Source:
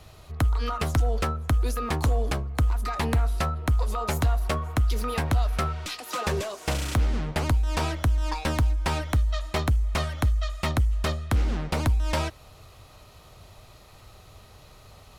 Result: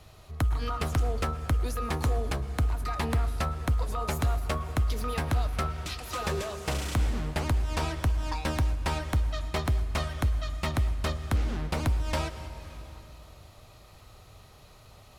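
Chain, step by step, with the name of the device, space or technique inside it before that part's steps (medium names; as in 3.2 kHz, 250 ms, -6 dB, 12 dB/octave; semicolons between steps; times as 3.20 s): compressed reverb return (on a send at -7 dB: reverberation RT60 2.4 s, pre-delay 102 ms + compression, threshold -25 dBFS, peak gain reduction 8.5 dB); on the sum: trim -3.5 dB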